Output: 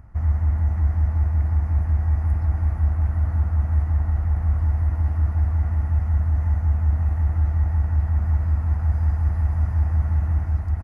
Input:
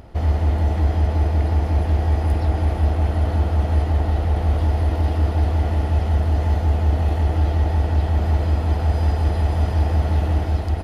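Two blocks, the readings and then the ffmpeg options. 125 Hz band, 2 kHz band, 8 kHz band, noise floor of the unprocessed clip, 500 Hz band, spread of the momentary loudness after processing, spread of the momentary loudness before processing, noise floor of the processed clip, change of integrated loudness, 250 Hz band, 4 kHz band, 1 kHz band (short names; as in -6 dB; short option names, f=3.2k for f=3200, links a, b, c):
-1.5 dB, -8.0 dB, n/a, -24 dBFS, -16.5 dB, 1 LU, 1 LU, -27 dBFS, -2.0 dB, -9.5 dB, under -20 dB, -11.0 dB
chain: -af "firequalizer=gain_entry='entry(110,0);entry(400,-19);entry(1100,-4);entry(1900,-6);entry(3300,-27);entry(6100,-13)':delay=0.05:min_phase=1,volume=-1.5dB"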